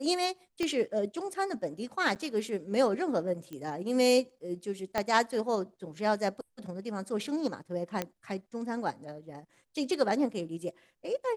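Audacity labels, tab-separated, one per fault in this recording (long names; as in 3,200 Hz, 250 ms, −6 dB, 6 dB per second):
0.630000	0.630000	click −18 dBFS
2.150000	2.160000	drop-out 8.3 ms
3.530000	3.530000	click −28 dBFS
4.980000	4.980000	click −14 dBFS
8.020000	8.020000	click −16 dBFS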